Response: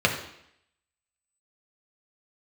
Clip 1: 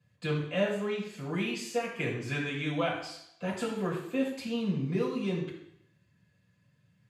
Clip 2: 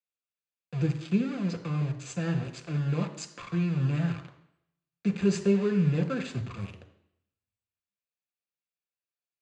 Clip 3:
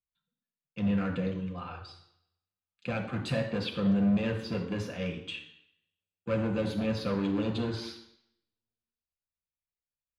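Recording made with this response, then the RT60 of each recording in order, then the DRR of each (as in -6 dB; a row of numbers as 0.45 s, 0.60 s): 3; 0.75 s, 0.75 s, 0.75 s; -6.0 dB, 5.5 dB, 0.5 dB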